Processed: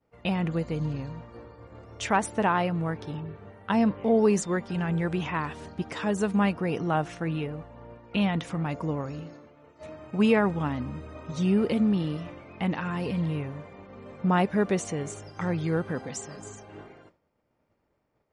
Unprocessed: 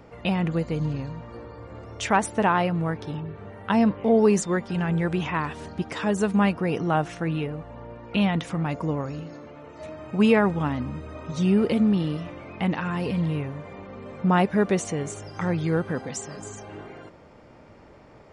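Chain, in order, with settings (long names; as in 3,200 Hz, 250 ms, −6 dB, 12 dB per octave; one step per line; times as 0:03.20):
downward expander −36 dBFS
level −3 dB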